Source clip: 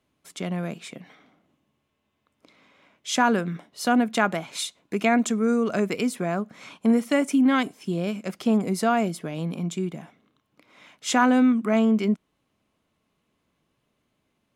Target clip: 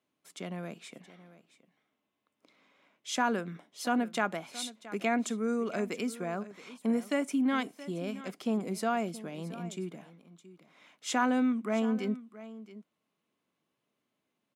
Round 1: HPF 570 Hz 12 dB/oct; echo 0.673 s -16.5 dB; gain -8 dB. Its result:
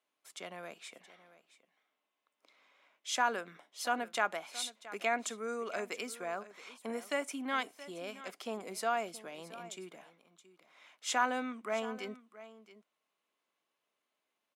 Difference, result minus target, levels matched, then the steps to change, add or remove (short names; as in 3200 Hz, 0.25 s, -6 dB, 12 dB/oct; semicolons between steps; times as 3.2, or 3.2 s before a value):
250 Hz band -9.0 dB
change: HPF 180 Hz 12 dB/oct